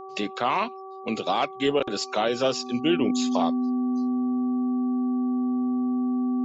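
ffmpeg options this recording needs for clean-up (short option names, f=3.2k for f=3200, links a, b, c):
-af "bandreject=f=383.1:t=h:w=4,bandreject=f=766.2:t=h:w=4,bandreject=f=1.1493k:t=h:w=4,bandreject=f=250:w=30"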